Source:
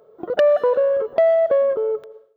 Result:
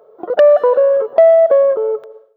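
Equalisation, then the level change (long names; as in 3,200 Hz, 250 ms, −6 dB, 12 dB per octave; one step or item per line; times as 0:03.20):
high-pass filter 74 Hz
parametric band 750 Hz +15 dB 2.9 octaves
high-shelf EQ 3,400 Hz +7 dB
−7.5 dB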